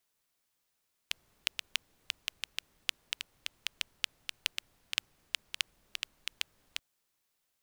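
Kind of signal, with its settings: rain from filtered ticks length 5.68 s, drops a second 5, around 2.9 kHz, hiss -28.5 dB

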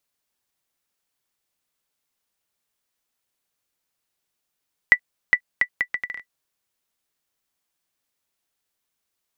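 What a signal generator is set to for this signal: bouncing ball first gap 0.41 s, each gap 0.69, 1.97 kHz, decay 74 ms -1.5 dBFS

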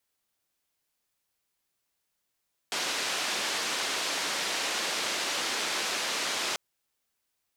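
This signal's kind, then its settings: noise band 290–5300 Hz, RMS -31 dBFS 3.84 s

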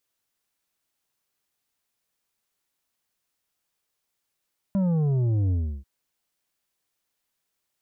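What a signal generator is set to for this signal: sub drop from 200 Hz, over 1.09 s, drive 7.5 dB, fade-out 0.33 s, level -21 dB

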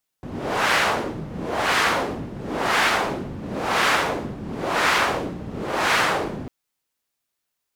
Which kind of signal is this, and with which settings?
wind-like swept noise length 6.25 s, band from 180 Hz, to 1.6 kHz, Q 1, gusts 6, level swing 14 dB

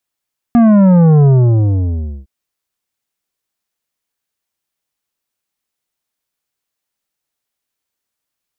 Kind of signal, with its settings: sub drop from 240 Hz, over 1.71 s, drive 10 dB, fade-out 1.01 s, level -6 dB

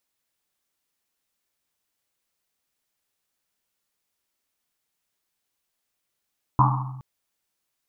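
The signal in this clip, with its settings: Risset drum length 0.42 s, pitch 130 Hz, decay 1.27 s, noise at 1 kHz, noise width 370 Hz, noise 45%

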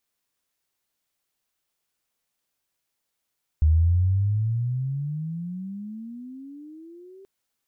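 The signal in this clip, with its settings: gliding synth tone sine, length 3.63 s, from 75.8 Hz, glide +28.5 st, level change -30 dB, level -14 dB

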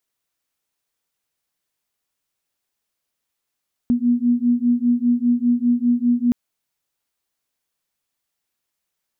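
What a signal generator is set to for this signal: beating tones 239 Hz, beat 5 Hz, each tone -18 dBFS 2.42 s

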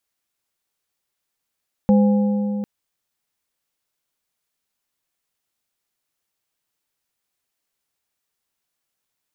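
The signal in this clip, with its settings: metal hit plate, length 0.75 s, lowest mode 205 Hz, modes 3, decay 3.55 s, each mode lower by 8 dB, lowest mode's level -10.5 dB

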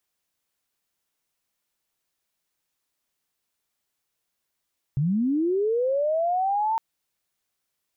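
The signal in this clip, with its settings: sweep linear 130 Hz -> 910 Hz -20 dBFS -> -21 dBFS 1.81 s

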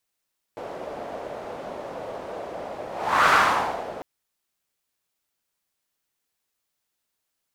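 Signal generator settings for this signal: whoosh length 3.45 s, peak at 2.73 s, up 0.43 s, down 0.67 s, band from 600 Hz, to 1.3 kHz, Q 2.6, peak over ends 18 dB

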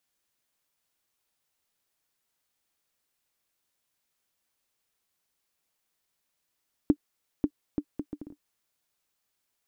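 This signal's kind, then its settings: bouncing ball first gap 0.54 s, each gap 0.63, 294 Hz, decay 64 ms -9.5 dBFS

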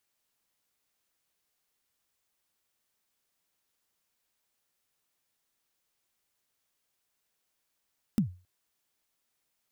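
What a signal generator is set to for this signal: kick drum length 0.27 s, from 240 Hz, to 90 Hz, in 104 ms, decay 0.33 s, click on, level -18 dB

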